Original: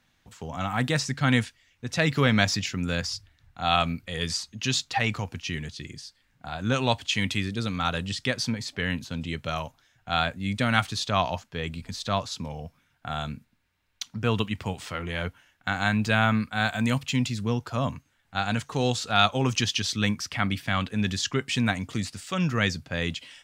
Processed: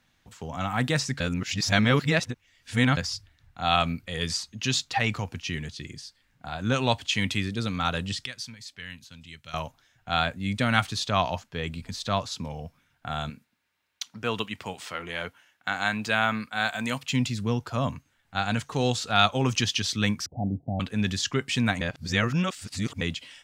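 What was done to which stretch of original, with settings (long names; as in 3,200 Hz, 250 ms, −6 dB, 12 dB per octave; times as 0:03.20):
0:01.20–0:02.97: reverse
0:08.26–0:09.54: guitar amp tone stack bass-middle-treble 5-5-5
0:13.30–0:17.10: high-pass filter 400 Hz 6 dB per octave
0:20.26–0:20.80: Butterworth low-pass 810 Hz 96 dB per octave
0:21.81–0:23.01: reverse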